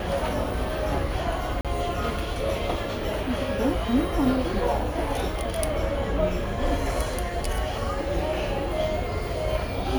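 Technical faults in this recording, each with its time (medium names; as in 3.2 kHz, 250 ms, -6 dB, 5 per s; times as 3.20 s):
1.61–1.65 s: dropout 37 ms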